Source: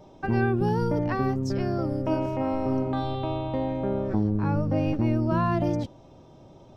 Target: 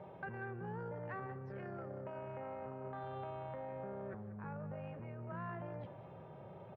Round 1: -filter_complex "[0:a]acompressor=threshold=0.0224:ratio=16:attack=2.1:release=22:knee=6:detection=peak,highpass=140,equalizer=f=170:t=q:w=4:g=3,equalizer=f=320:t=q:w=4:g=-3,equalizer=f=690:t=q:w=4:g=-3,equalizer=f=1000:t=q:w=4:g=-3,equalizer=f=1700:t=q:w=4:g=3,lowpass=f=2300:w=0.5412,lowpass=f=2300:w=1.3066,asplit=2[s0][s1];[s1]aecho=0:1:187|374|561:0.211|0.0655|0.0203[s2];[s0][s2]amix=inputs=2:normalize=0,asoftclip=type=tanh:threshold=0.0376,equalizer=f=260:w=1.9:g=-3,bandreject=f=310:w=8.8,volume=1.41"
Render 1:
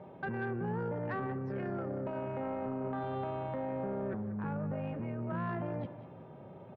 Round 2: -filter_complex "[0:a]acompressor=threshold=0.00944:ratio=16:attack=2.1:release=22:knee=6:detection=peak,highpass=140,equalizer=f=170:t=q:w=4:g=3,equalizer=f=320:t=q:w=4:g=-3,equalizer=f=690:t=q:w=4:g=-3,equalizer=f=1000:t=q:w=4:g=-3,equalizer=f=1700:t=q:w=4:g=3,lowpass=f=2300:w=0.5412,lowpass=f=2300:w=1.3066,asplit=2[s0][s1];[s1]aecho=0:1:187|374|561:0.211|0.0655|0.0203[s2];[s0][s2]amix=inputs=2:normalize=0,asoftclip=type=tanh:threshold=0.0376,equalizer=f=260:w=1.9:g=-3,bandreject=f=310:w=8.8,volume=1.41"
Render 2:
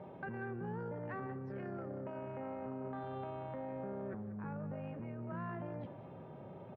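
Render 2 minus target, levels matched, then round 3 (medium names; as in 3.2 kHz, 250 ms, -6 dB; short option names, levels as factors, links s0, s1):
250 Hz band +3.5 dB
-filter_complex "[0:a]acompressor=threshold=0.00944:ratio=16:attack=2.1:release=22:knee=6:detection=peak,highpass=140,equalizer=f=170:t=q:w=4:g=3,equalizer=f=320:t=q:w=4:g=-3,equalizer=f=690:t=q:w=4:g=-3,equalizer=f=1000:t=q:w=4:g=-3,equalizer=f=1700:t=q:w=4:g=3,lowpass=f=2300:w=0.5412,lowpass=f=2300:w=1.3066,asplit=2[s0][s1];[s1]aecho=0:1:187|374|561:0.211|0.0655|0.0203[s2];[s0][s2]amix=inputs=2:normalize=0,asoftclip=type=tanh:threshold=0.0376,equalizer=f=260:w=1.9:g=-12.5,bandreject=f=310:w=8.8,volume=1.41"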